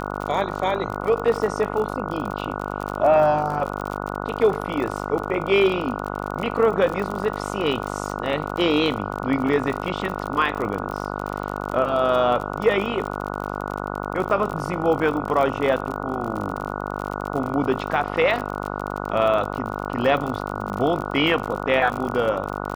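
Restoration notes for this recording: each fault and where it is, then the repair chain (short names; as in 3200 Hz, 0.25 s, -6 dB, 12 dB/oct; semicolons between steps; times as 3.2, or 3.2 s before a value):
buzz 50 Hz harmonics 29 -29 dBFS
crackle 47/s -27 dBFS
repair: de-click; de-hum 50 Hz, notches 29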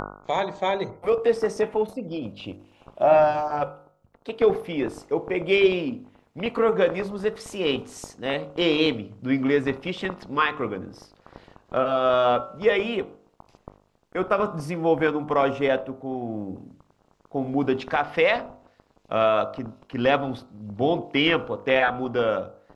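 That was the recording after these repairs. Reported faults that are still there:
none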